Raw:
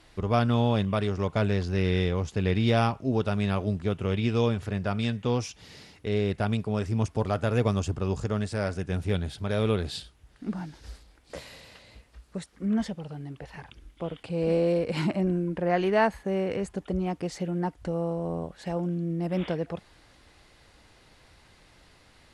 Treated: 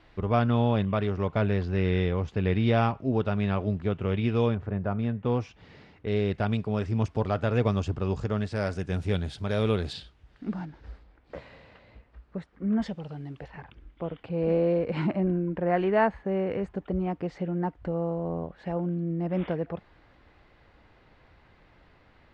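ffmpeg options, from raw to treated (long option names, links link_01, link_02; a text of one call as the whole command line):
ffmpeg -i in.wav -af "asetnsamples=nb_out_samples=441:pad=0,asendcmd='4.55 lowpass f 1300;5.25 lowpass f 2100;6.08 lowpass f 4100;8.56 lowpass f 7400;9.93 lowpass f 3800;10.65 lowpass f 1900;12.82 lowpass f 4600;13.48 lowpass f 2200',lowpass=2900" out.wav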